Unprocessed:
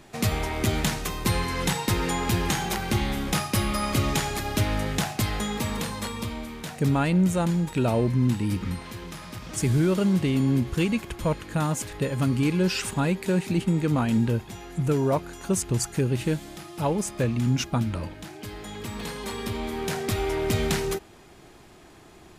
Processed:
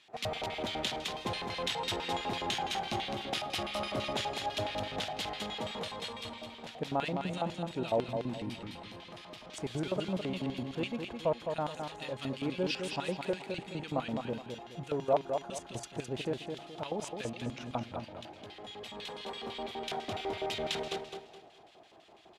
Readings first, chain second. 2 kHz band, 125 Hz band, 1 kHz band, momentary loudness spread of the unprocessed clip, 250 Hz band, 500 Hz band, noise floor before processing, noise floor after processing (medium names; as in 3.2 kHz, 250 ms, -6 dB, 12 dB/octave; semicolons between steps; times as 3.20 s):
-8.5 dB, -17.5 dB, -5.0 dB, 11 LU, -14.0 dB, -6.0 dB, -50 dBFS, -55 dBFS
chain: bass shelf 220 Hz +7.5 dB; LFO band-pass square 6 Hz 680–3300 Hz; on a send: feedback delay 211 ms, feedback 32%, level -6 dB